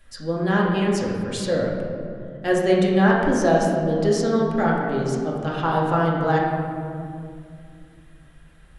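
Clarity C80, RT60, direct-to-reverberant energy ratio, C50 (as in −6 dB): 2.5 dB, 2.4 s, −4.5 dB, 1.0 dB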